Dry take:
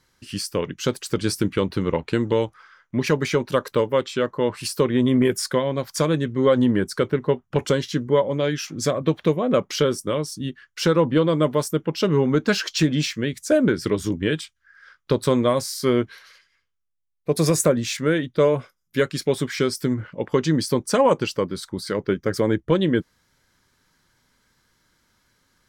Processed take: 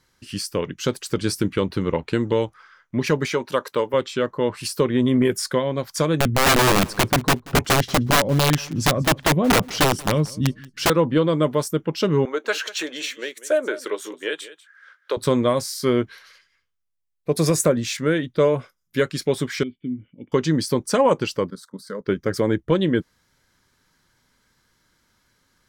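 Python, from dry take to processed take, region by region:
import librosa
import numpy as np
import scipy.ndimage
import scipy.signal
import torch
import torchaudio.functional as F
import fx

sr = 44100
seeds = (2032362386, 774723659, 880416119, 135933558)

y = fx.chain(x, sr, fx.highpass(hz=340.0, slope=6),
    fx.peak_eq(hz=930.0, db=4.0, octaves=0.23), at=(3.26, 3.94))
y = fx.chain(y, sr, fx.bass_treble(bass_db=11, treble_db=-2),
    fx.overflow_wrap(gain_db=11.0),
    fx.echo_feedback(ms=182, feedback_pct=19, wet_db=-22.0), at=(6.2, 10.9))
y = fx.chain(y, sr, fx.highpass(hz=430.0, slope=24),
    fx.peak_eq(hz=5000.0, db=-11.5, octaves=0.25),
    fx.echo_single(ms=193, db=-16.5), at=(12.25, 15.17))
y = fx.chain(y, sr, fx.formant_cascade(vowel='i'),
    fx.peak_eq(hz=330.0, db=-3.5, octaves=1.0), at=(19.63, 20.32))
y = fx.chain(y, sr, fx.highpass(hz=130.0, slope=12),
    fx.level_steps(step_db=14),
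    fx.fixed_phaser(hz=510.0, stages=8), at=(21.5, 22.06))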